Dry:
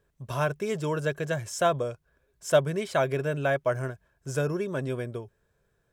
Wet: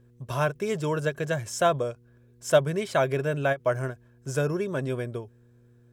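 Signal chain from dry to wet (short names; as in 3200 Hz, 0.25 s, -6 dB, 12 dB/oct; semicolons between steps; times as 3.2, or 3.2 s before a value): buzz 120 Hz, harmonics 4, -59 dBFS -7 dB/oct; ending taper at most 400 dB/s; gain +1.5 dB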